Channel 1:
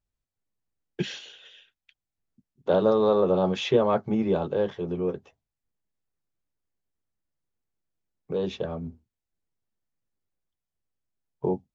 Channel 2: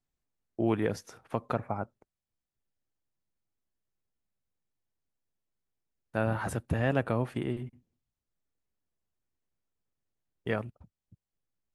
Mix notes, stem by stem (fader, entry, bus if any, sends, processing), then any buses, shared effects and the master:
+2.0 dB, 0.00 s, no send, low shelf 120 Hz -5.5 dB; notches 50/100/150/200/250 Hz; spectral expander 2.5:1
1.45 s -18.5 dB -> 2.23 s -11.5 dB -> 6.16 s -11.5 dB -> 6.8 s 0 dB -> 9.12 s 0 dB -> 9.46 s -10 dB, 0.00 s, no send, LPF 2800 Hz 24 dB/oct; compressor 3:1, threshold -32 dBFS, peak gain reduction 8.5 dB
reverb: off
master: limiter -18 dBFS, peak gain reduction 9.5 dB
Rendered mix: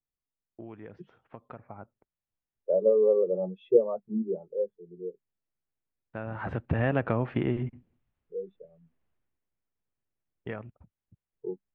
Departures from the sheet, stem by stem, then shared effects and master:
stem 2 -18.5 dB -> -10.0 dB; master: missing limiter -18 dBFS, peak gain reduction 9.5 dB

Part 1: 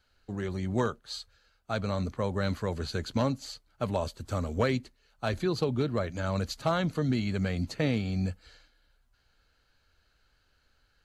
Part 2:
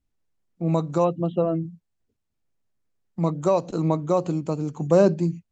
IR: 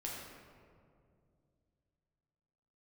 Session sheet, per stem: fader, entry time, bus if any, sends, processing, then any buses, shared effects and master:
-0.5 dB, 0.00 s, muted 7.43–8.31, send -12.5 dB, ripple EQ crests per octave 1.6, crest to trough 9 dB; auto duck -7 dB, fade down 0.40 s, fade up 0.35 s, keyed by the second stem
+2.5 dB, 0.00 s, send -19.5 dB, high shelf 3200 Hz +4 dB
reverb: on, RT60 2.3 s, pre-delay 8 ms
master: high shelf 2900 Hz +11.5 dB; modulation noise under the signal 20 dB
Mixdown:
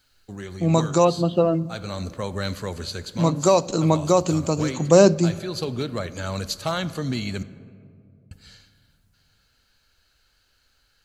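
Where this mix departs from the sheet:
stem 1: missing ripple EQ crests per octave 1.6, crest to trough 9 dB; master: missing modulation noise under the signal 20 dB

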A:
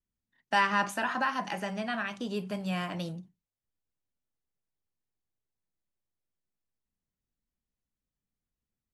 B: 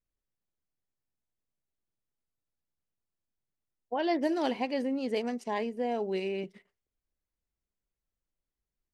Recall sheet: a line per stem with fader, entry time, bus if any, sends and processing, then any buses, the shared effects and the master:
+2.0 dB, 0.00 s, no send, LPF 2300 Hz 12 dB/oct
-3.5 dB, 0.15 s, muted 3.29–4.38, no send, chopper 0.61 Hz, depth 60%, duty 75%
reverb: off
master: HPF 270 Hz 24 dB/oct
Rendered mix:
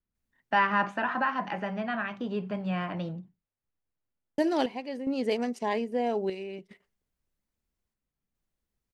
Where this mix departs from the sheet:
stem B -3.5 dB -> +3.0 dB; master: missing HPF 270 Hz 24 dB/oct

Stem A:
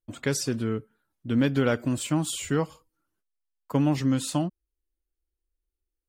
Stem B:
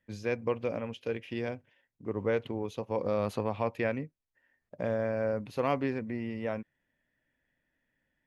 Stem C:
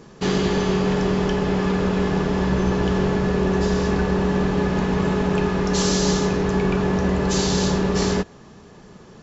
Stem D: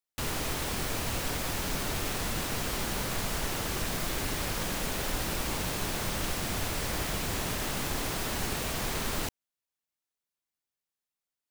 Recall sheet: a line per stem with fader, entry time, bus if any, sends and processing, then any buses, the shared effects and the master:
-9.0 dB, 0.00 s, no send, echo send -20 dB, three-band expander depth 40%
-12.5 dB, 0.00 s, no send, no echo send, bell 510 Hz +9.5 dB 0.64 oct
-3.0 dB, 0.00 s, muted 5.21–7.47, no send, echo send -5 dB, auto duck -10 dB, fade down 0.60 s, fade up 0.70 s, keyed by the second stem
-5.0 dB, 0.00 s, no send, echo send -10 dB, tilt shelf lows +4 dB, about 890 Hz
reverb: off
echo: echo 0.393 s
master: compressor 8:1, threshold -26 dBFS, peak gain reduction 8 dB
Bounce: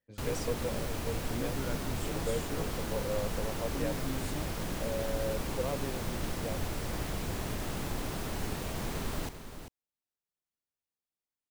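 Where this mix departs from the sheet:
stem A -9.0 dB -> -16.5 dB; stem C: muted; master: missing compressor 8:1, threshold -26 dBFS, peak gain reduction 8 dB

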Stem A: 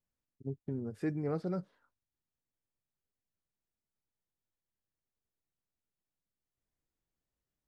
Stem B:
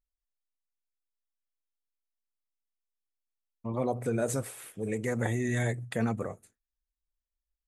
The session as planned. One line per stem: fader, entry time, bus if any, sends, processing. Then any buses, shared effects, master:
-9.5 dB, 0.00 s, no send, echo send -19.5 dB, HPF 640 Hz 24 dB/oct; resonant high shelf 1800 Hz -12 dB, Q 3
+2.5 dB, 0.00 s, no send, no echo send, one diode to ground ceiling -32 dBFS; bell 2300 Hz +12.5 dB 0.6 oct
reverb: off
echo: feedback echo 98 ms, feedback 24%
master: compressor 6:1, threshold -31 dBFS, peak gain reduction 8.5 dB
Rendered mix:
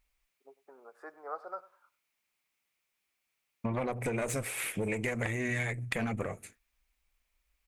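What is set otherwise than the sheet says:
stem A -9.5 dB -> +2.0 dB; stem B +2.5 dB -> +12.0 dB

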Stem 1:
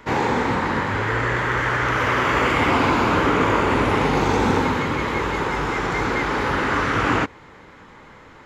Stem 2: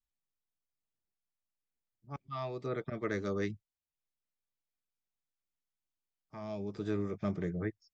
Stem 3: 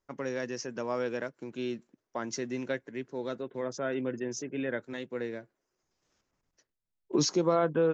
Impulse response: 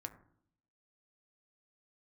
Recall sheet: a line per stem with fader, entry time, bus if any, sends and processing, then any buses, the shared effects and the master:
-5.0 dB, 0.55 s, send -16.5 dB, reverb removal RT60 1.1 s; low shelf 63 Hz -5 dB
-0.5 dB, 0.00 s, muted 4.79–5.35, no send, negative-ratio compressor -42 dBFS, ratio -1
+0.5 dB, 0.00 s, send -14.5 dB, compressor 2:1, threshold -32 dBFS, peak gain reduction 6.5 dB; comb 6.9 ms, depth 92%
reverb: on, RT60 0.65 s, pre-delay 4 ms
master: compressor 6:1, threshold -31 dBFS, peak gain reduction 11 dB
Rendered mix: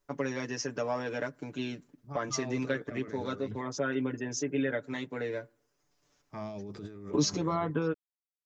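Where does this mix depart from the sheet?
stem 1: muted; master: missing compressor 6:1, threshold -31 dBFS, peak gain reduction 11 dB

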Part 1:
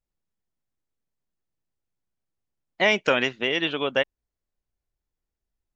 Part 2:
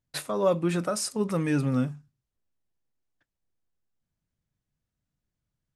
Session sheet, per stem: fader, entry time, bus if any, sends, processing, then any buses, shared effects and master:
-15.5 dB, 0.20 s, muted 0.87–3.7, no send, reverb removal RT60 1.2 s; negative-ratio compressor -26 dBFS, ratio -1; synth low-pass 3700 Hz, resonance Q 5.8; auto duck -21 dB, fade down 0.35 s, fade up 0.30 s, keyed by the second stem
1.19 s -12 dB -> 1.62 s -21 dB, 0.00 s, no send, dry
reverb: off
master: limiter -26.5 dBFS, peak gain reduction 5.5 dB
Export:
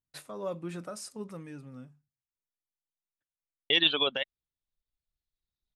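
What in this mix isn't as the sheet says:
stem 1 -15.5 dB -> -5.0 dB; master: missing limiter -26.5 dBFS, peak gain reduction 5.5 dB

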